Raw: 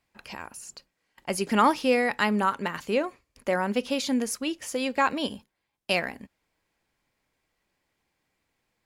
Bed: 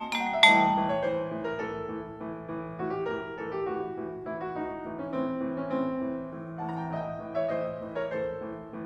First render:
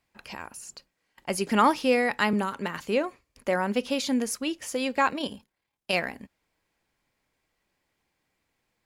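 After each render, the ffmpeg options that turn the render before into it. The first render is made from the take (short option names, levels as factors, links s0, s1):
-filter_complex "[0:a]asettb=1/sr,asplit=3[s0][s1][s2];[s0]atrim=end=2.334[s3];[s1]atrim=start=2.33:end=2.82,asetpts=PTS-STARTPTS,afade=t=in:d=0.004:c=qsin,afade=t=out:st=0.486:d=0.004:c=qsin,acrossover=split=470|3000[s4][s5][s6];[s5]acompressor=threshold=0.0447:ratio=6:attack=3.2:release=140:knee=2.83:detection=peak[s7];[s4][s7][s6]amix=inputs=3:normalize=0[s8];[s2]atrim=start=2.816[s9];[s3][s8]acrossfade=d=0.004:c1=hsin:c2=qsin[s10];[s10][s9]acrossfade=d=0.004:c1=qsin:c2=hsin,asettb=1/sr,asplit=3[s11][s12][s13];[s11]atrim=end=5.104[s14];[s12]atrim=start=5.1:end=5.94,asetpts=PTS-STARTPTS,afade=t=in:d=0.004:c=qsin,afade=t=out:st=0.836:d=0.004:c=qsin,tremolo=f=36:d=0.462[s15];[s13]atrim=start=5.936[s16];[s14][s15]acrossfade=d=0.004:c1=hsin:c2=qsin[s17];[s17][s16]acrossfade=d=0.004:c1=qsin:c2=hsin"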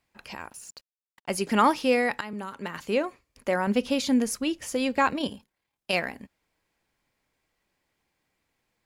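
-filter_complex "[0:a]asettb=1/sr,asplit=3[s0][s1][s2];[s0]atrim=end=0.504[s3];[s1]atrim=start=0.5:end=1.37,asetpts=PTS-STARTPTS,afade=t=in:d=0.004:c=qsin,afade=t=out:st=0.866:d=0.004:c=qsin,aeval=exprs='sgn(val(0))*max(abs(val(0))-0.00168,0)':c=same[s4];[s2]atrim=start=1.366[s5];[s3][s4]acrossfade=d=0.004:c1=hsin:c2=qsin[s6];[s6][s5]acrossfade=d=0.004:c1=qsin:c2=hsin,asettb=1/sr,asplit=3[s7][s8][s9];[s7]atrim=end=3.674[s10];[s8]atrim=start=3.67:end=5.3,asetpts=PTS-STARTPTS,afade=t=in:d=0.004:c=qsin,afade=t=out:st=1.626:d=0.004:c=qsin,lowshelf=f=190:g=9.5[s11];[s9]atrim=start=5.296[s12];[s10][s11]acrossfade=d=0.004:c1=hsin:c2=qsin[s13];[s13][s12]acrossfade=d=0.004:c1=qsin:c2=hsin,asplit=2[s14][s15];[s14]atrim=end=2.21,asetpts=PTS-STARTPTS,afade=t=out:st=2.206:d=0.004:c=hsin:silence=0.141254[s16];[s15]atrim=start=2.21,asetpts=PTS-STARTPTS,afade=t=in:d=0.71:silence=0.141254[s17];[s16][s17]concat=n=2:v=0:a=1"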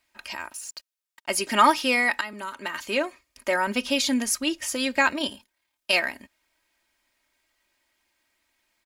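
-af "tiltshelf=f=710:g=-6,aecho=1:1:3.2:0.61"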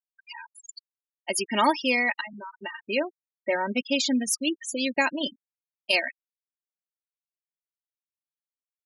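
-af "afftfilt=real='re*gte(hypot(re,im),0.0631)':imag='im*gte(hypot(re,im),0.0631)':win_size=1024:overlap=0.75,equalizer=f=1300:t=o:w=0.64:g=-9.5"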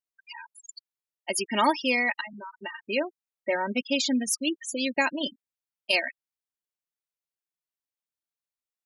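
-af "volume=0.891"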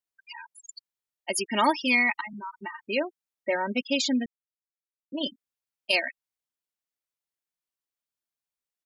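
-filter_complex "[0:a]asplit=3[s0][s1][s2];[s0]afade=t=out:st=1.86:d=0.02[s3];[s1]aecho=1:1:0.9:0.81,afade=t=in:st=1.86:d=0.02,afade=t=out:st=2.84:d=0.02[s4];[s2]afade=t=in:st=2.84:d=0.02[s5];[s3][s4][s5]amix=inputs=3:normalize=0,asplit=3[s6][s7][s8];[s6]atrim=end=4.26,asetpts=PTS-STARTPTS,afade=t=out:st=4.256:d=0.004:c=hsin[s9];[s7]atrim=start=4.26:end=5.12,asetpts=PTS-STARTPTS,volume=0[s10];[s8]atrim=start=5.12,asetpts=PTS-STARTPTS,afade=t=in:d=0.004:c=hsin[s11];[s9][s10][s11]concat=n=3:v=0:a=1"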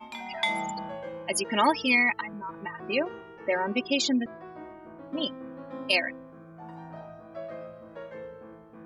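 -filter_complex "[1:a]volume=0.335[s0];[0:a][s0]amix=inputs=2:normalize=0"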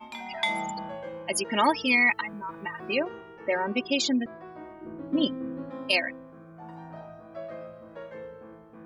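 -filter_complex "[0:a]asplit=3[s0][s1][s2];[s0]afade=t=out:st=2.01:d=0.02[s3];[s1]highshelf=f=2700:g=9,afade=t=in:st=2.01:d=0.02,afade=t=out:st=2.92:d=0.02[s4];[s2]afade=t=in:st=2.92:d=0.02[s5];[s3][s4][s5]amix=inputs=3:normalize=0,asettb=1/sr,asplit=3[s6][s7][s8];[s6]atrim=end=4.814[s9];[s7]atrim=start=4.81:end=5.7,asetpts=PTS-STARTPTS,afade=t=in:d=0.004:c=qsin,afade=t=out:st=0.886:d=0.004:c=qsin,lowshelf=f=510:t=q:w=1.5:g=6.5[s10];[s8]atrim=start=5.696[s11];[s9][s10]acrossfade=d=0.004:c1=hsin:c2=qsin[s12];[s12][s11]acrossfade=d=0.004:c1=qsin:c2=hsin"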